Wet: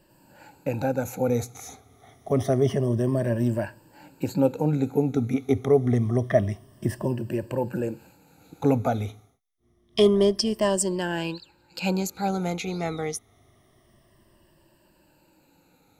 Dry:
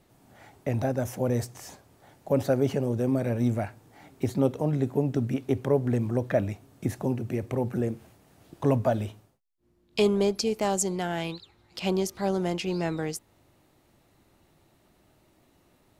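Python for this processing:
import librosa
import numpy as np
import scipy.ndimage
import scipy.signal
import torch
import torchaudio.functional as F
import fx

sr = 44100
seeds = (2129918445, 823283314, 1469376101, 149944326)

y = fx.spec_ripple(x, sr, per_octave=1.3, drift_hz=-0.27, depth_db=15)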